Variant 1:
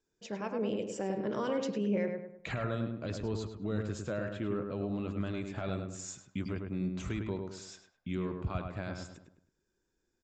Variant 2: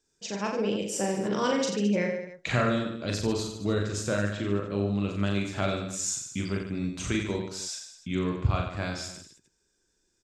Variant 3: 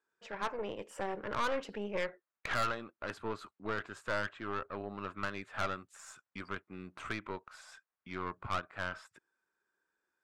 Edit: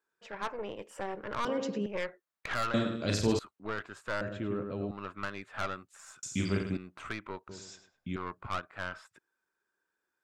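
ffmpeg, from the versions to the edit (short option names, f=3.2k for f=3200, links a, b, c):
-filter_complex "[0:a]asplit=3[a][b][c];[1:a]asplit=2[d][e];[2:a]asplit=6[f][g][h][i][j][k];[f]atrim=end=1.452[l];[a]atrim=start=1.448:end=1.862[m];[g]atrim=start=1.858:end=2.742[n];[d]atrim=start=2.738:end=3.392[o];[h]atrim=start=3.388:end=4.212[p];[b]atrim=start=4.208:end=4.912[q];[i]atrim=start=4.908:end=6.232[r];[e]atrim=start=6.228:end=6.772[s];[j]atrim=start=6.768:end=7.492[t];[c]atrim=start=7.488:end=8.162[u];[k]atrim=start=8.158[v];[l][m]acrossfade=d=0.004:c1=hsin:c2=hsin[w];[w][n]acrossfade=d=0.004:c1=hsin:c2=hsin[x];[x][o]acrossfade=d=0.004:c1=hsin:c2=hsin[y];[y][p]acrossfade=d=0.004:c1=hsin:c2=hsin[z];[z][q]acrossfade=d=0.004:c1=hsin:c2=hsin[aa];[aa][r]acrossfade=d=0.004:c1=hsin:c2=hsin[ab];[ab][s]acrossfade=d=0.004:c1=hsin:c2=hsin[ac];[ac][t]acrossfade=d=0.004:c1=hsin:c2=hsin[ad];[ad][u]acrossfade=d=0.004:c1=hsin:c2=hsin[ae];[ae][v]acrossfade=d=0.004:c1=hsin:c2=hsin"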